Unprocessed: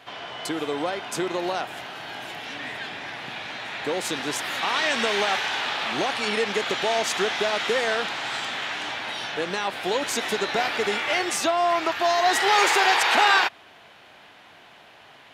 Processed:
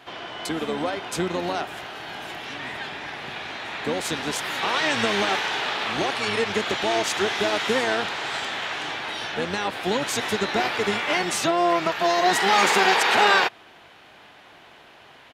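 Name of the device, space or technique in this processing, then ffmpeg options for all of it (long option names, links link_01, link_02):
octave pedal: -filter_complex "[0:a]asplit=2[link_01][link_02];[link_02]asetrate=22050,aresample=44100,atempo=2,volume=-7dB[link_03];[link_01][link_03]amix=inputs=2:normalize=0,asettb=1/sr,asplit=3[link_04][link_05][link_06];[link_04]atrim=end=7.274[link_07];[link_05]atrim=start=7.27:end=7.83,asetpts=PTS-STARTPTS,afade=type=in:duration=0.004:curve=qsin,afade=type=out:start_time=0.556:duration=0.004:curve=qsin,highshelf=frequency=9200:gain=6[link_08];[link_06]atrim=start=7.826[link_09];[link_07][link_08]acrossfade=duration=0.004:curve1=hsin:curve2=qsin[link_10];[link_10][link_09]acrossfade=duration=0.004:curve1=qsin:curve2=hsin"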